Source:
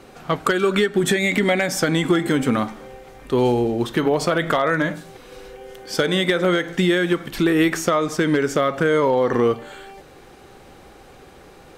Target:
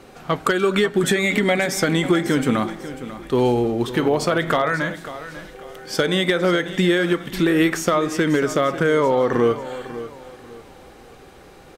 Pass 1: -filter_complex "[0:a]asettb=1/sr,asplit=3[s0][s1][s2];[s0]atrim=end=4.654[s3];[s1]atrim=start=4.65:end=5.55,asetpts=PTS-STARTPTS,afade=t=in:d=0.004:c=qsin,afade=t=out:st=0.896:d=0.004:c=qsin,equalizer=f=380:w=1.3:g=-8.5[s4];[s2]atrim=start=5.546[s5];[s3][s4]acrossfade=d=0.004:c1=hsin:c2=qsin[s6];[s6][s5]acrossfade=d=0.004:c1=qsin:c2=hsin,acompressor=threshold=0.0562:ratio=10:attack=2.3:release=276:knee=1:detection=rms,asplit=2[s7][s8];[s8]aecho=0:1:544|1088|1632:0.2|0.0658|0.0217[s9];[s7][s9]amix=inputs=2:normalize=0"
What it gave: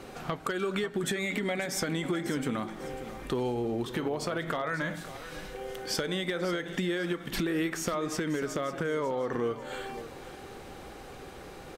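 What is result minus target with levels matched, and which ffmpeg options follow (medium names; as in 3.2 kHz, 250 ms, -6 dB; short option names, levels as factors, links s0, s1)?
compression: peak gain reduction +14 dB
-filter_complex "[0:a]asettb=1/sr,asplit=3[s0][s1][s2];[s0]atrim=end=4.654[s3];[s1]atrim=start=4.65:end=5.55,asetpts=PTS-STARTPTS,afade=t=in:d=0.004:c=qsin,afade=t=out:st=0.896:d=0.004:c=qsin,equalizer=f=380:w=1.3:g=-8.5[s4];[s2]atrim=start=5.546[s5];[s3][s4]acrossfade=d=0.004:c1=hsin:c2=qsin[s6];[s6][s5]acrossfade=d=0.004:c1=qsin:c2=hsin,asplit=2[s7][s8];[s8]aecho=0:1:544|1088|1632:0.2|0.0658|0.0217[s9];[s7][s9]amix=inputs=2:normalize=0"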